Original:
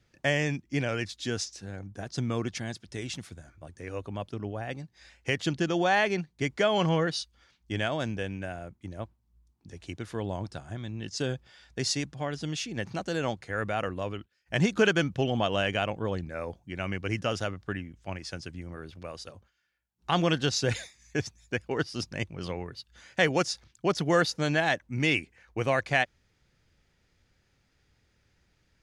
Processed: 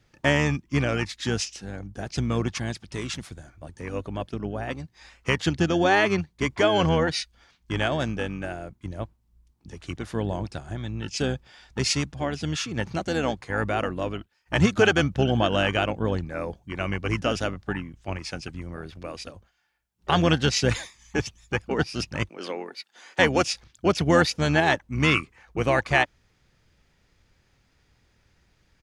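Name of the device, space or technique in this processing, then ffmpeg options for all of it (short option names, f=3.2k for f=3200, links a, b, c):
octave pedal: -filter_complex "[0:a]asplit=2[a][b];[b]asetrate=22050,aresample=44100,atempo=2,volume=-8dB[c];[a][c]amix=inputs=2:normalize=0,asettb=1/sr,asplit=3[d][e][f];[d]atrim=end=22.294[g];[e]atrim=start=22.29:end=23.19,asetpts=PTS-STARTPTS,afade=t=in:d=0.004:c=qsin,afade=t=out:st=0.896:d=0.004:c=qsin,highpass=f=270:w=0.5412,highpass=f=270:w=1.3066[h];[f]atrim=start=23.186[i];[g][h]acrossfade=d=0.004:c1=hsin:c2=qsin[j];[j][i]acrossfade=d=0.004:c1=qsin:c2=hsin,volume=4dB"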